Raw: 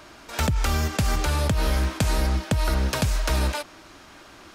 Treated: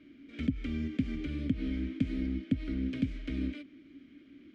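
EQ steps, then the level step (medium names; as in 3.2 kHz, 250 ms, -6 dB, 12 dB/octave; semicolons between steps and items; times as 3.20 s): vowel filter i; tilt EQ -3.5 dB/octave; 0.0 dB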